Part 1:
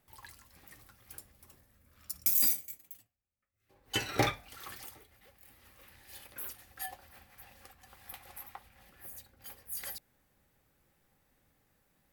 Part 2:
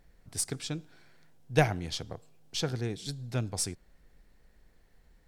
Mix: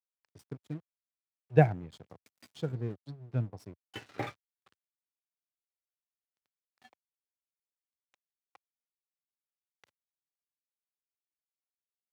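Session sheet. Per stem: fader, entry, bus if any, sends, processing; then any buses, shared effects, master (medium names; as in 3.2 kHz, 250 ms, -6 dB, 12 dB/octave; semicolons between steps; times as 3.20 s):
-6.5 dB, 0.00 s, no send, none
+1.5 dB, 0.00 s, no send, spectral contrast expander 1.5:1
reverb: none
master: low-pass 2.6 kHz 12 dB/octave; crossover distortion -48.5 dBFS; high-pass 86 Hz 24 dB/octave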